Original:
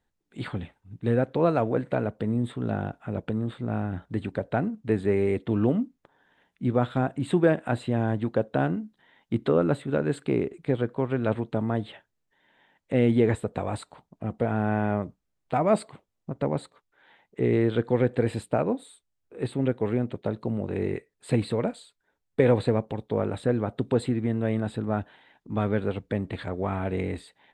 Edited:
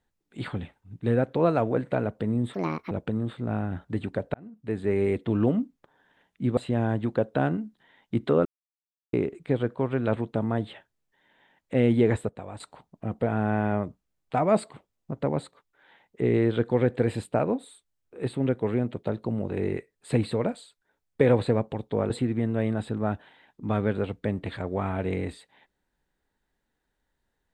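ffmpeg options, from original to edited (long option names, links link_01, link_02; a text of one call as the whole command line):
ffmpeg -i in.wav -filter_complex "[0:a]asplit=10[link_01][link_02][link_03][link_04][link_05][link_06][link_07][link_08][link_09][link_10];[link_01]atrim=end=2.544[link_11];[link_02]atrim=start=2.54:end=3.12,asetpts=PTS-STARTPTS,asetrate=68796,aresample=44100,atrim=end_sample=16396,asetpts=PTS-STARTPTS[link_12];[link_03]atrim=start=3.116:end=4.55,asetpts=PTS-STARTPTS,afade=type=out:start_time=1.43:duration=0.004:curve=hsin[link_13];[link_04]atrim=start=4.55:end=6.782,asetpts=PTS-STARTPTS,afade=type=in:duration=0.69[link_14];[link_05]atrim=start=7.758:end=9.64,asetpts=PTS-STARTPTS,afade=type=out:start_time=1.878:duration=0.004:curve=hsin[link_15];[link_06]atrim=start=9.64:end=10.32,asetpts=PTS-STARTPTS,volume=0[link_16];[link_07]atrim=start=10.32:end=13.482,asetpts=PTS-STARTPTS,afade=type=in:duration=0.004:curve=hsin[link_17];[link_08]atrim=start=13.478:end=13.792,asetpts=PTS-STARTPTS,volume=-9.5dB[link_18];[link_09]atrim=start=13.788:end=23.292[link_19];[link_10]atrim=start=23.968[link_20];[link_11][link_12]acrossfade=duration=0.004:curve1=hsin:curve2=hsin[link_21];[link_13][link_14]concat=n=2:v=0:a=1[link_22];[link_21][link_22]acrossfade=duration=0.004:curve1=hsin:curve2=hsin[link_23];[link_15][link_16][link_17]concat=n=3:v=0:a=1[link_24];[link_23][link_24]acrossfade=duration=0.004:curve1=hsin:curve2=hsin[link_25];[link_25][link_18]acrossfade=duration=0.004:curve1=hsin:curve2=hsin[link_26];[link_26][link_19]acrossfade=duration=0.004:curve1=hsin:curve2=hsin[link_27];[link_27][link_20]acrossfade=duration=0.004:curve1=hsin:curve2=hsin" out.wav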